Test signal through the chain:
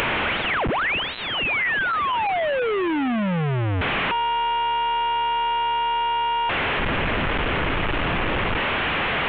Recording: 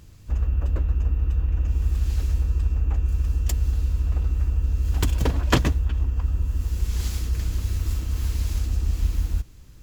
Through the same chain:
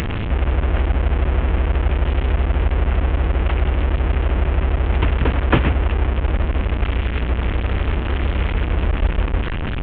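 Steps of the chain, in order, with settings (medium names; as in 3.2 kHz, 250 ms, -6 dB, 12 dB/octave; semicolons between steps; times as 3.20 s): one-bit delta coder 16 kbps, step -20 dBFS; upward compressor, threshold -30 dBFS; trim +4 dB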